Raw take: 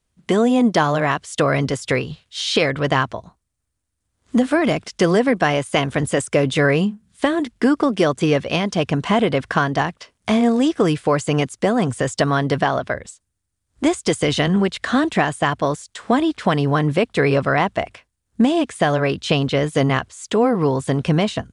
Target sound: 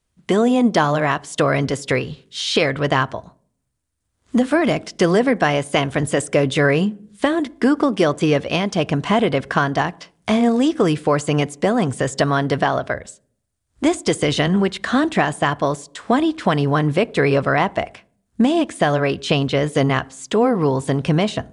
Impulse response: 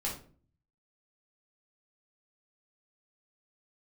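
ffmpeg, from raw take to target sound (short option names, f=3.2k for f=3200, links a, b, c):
-filter_complex "[0:a]asplit=2[a][b];[b]highpass=180[c];[1:a]atrim=start_sample=2205,asetrate=32634,aresample=44100,lowpass=f=1.6k:p=1[d];[c][d]afir=irnorm=-1:irlink=0,volume=-23dB[e];[a][e]amix=inputs=2:normalize=0"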